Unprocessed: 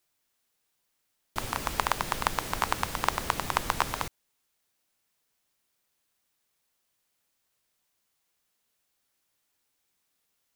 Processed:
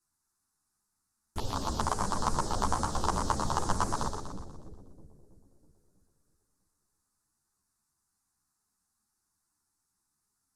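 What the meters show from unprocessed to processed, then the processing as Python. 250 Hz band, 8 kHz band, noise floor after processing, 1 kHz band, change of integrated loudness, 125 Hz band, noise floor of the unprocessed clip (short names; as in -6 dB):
+5.0 dB, -0.5 dB, -81 dBFS, -1.0 dB, -1.5 dB, +5.0 dB, -77 dBFS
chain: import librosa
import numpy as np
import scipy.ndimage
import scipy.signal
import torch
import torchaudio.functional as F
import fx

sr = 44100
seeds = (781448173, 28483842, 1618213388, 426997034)

p1 = fx.peak_eq(x, sr, hz=2200.0, db=-14.0, octaves=0.76)
p2 = fx.env_phaser(p1, sr, low_hz=540.0, high_hz=3400.0, full_db=-28.5)
p3 = fx.low_shelf(p2, sr, hz=250.0, db=3.5)
p4 = np.clip(p3, -10.0 ** (-18.5 / 20.0), 10.0 ** (-18.5 / 20.0))
p5 = p3 + (p4 * 10.0 ** (-3.0 / 20.0))
p6 = scipy.signal.sosfilt(scipy.signal.butter(4, 11000.0, 'lowpass', fs=sr, output='sos'), p5)
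p7 = fx.echo_split(p6, sr, split_hz=480.0, low_ms=324, high_ms=121, feedback_pct=52, wet_db=-6.0)
y = fx.ensemble(p7, sr)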